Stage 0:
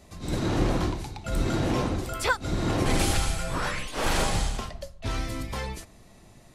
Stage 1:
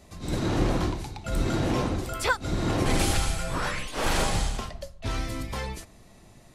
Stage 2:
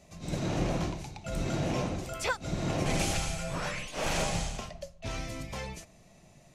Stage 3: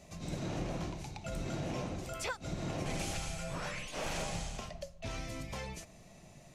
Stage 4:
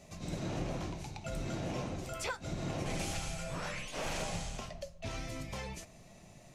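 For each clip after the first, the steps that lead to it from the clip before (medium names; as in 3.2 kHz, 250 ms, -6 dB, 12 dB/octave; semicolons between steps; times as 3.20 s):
no audible change
fifteen-band graphic EQ 160 Hz +9 dB, 630 Hz +8 dB, 2.5 kHz +7 dB, 6.3 kHz +8 dB; trim -9 dB
compression 2:1, threshold -43 dBFS, peak gain reduction 10.5 dB; trim +1.5 dB
flange 1.5 Hz, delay 7 ms, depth 4.1 ms, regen -68%; trim +4.5 dB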